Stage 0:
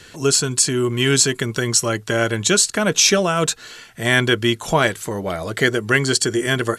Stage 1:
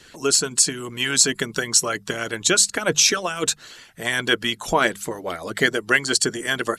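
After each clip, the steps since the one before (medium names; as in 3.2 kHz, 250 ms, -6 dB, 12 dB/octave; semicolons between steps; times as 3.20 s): harmonic-percussive split harmonic -15 dB; hum notches 50/100/150/200 Hz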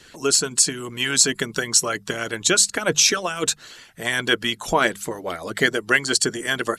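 no audible change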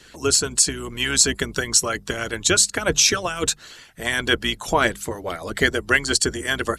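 octave divider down 2 oct, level -4 dB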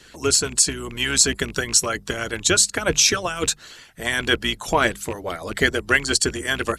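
rattle on loud lows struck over -30 dBFS, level -24 dBFS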